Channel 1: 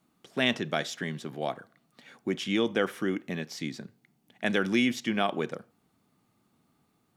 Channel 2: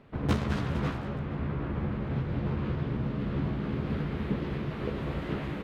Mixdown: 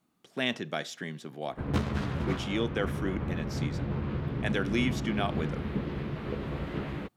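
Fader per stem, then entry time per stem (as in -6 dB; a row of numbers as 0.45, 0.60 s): -4.0, -1.5 dB; 0.00, 1.45 s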